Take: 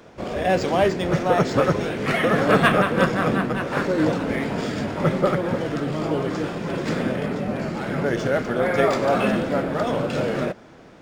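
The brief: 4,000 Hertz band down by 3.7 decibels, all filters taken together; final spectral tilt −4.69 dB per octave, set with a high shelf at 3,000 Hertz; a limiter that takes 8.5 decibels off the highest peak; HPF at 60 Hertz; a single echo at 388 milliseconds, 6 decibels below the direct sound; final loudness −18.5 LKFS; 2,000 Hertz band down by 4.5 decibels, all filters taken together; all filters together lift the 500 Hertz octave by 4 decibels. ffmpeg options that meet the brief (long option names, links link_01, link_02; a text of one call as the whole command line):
ffmpeg -i in.wav -af "highpass=60,equalizer=frequency=500:width_type=o:gain=5,equalizer=frequency=2000:width_type=o:gain=-7,highshelf=frequency=3000:gain=6,equalizer=frequency=4000:width_type=o:gain=-7,alimiter=limit=-11.5dB:level=0:latency=1,aecho=1:1:388:0.501,volume=3dB" out.wav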